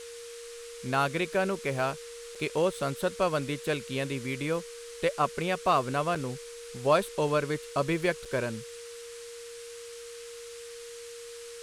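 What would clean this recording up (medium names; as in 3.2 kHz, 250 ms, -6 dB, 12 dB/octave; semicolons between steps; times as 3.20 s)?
clip repair -13.5 dBFS; band-stop 470 Hz, Q 30; interpolate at 2.35/6.15/8.25 s, 5 ms; noise print and reduce 30 dB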